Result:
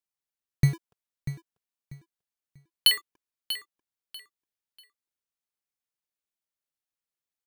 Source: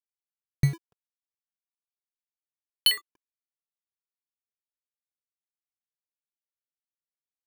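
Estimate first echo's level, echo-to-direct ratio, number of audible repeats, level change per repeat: -12.0 dB, -11.5 dB, 2, -11.5 dB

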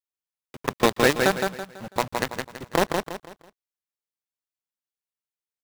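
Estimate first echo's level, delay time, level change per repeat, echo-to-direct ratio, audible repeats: -4.5 dB, 0.165 s, -9.0 dB, -4.0 dB, 4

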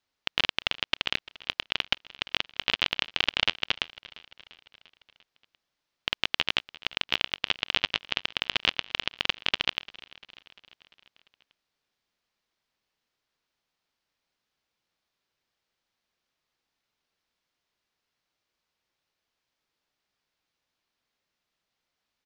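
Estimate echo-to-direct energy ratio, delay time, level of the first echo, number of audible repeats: -18.5 dB, 0.346 s, -20.5 dB, 4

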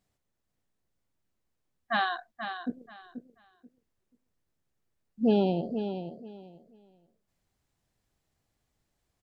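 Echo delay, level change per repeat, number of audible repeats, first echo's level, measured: 0.484 s, -13.5 dB, 2, -9.0 dB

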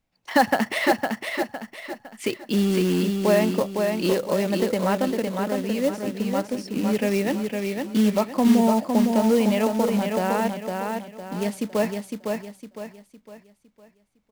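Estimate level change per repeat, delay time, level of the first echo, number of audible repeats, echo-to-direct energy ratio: -8.5 dB, 0.508 s, -4.5 dB, 4, -4.0 dB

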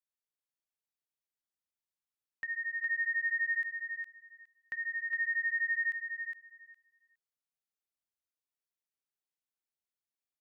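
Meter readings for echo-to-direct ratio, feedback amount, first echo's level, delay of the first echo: -4.0 dB, 16%, -4.0 dB, 0.412 s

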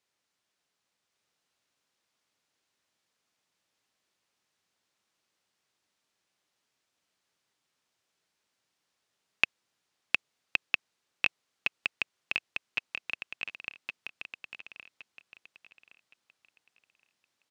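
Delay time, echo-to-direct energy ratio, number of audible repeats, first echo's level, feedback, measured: 1.117 s, -3.0 dB, 3, -3.5 dB, 26%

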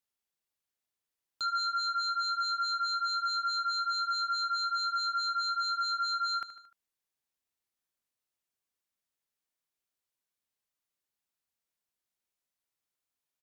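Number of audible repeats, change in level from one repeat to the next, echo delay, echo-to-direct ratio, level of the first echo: 4, -5.0 dB, 75 ms, -12.5 dB, -14.0 dB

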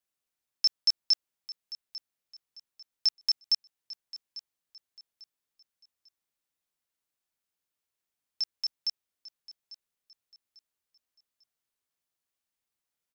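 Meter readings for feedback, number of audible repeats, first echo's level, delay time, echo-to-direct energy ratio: 32%, 2, -17.0 dB, 0.846 s, -16.5 dB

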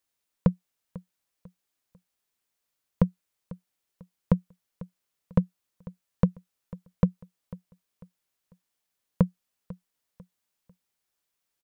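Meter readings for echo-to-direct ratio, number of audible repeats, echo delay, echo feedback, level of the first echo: -18.5 dB, 2, 0.496 s, 34%, -19.0 dB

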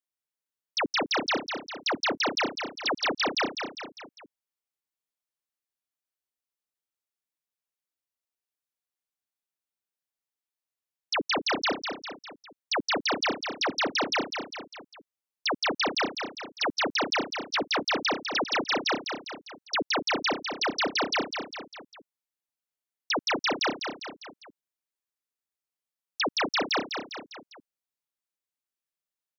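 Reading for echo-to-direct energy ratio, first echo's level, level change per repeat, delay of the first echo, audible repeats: -5.5 dB, -7.0 dB, -5.5 dB, 0.201 s, 4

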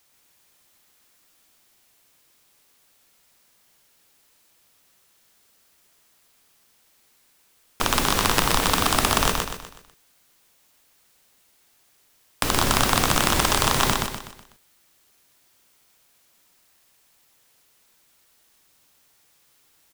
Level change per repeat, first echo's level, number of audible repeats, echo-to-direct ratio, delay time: -7.5 dB, -3.5 dB, 5, -2.5 dB, 0.124 s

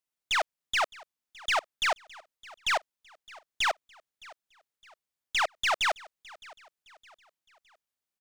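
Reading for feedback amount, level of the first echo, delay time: 41%, -22.0 dB, 0.613 s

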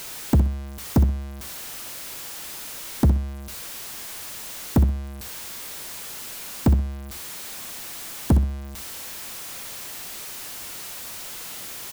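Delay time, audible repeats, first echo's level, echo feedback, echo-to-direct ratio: 63 ms, 2, -10.0 dB, 20%, -10.0 dB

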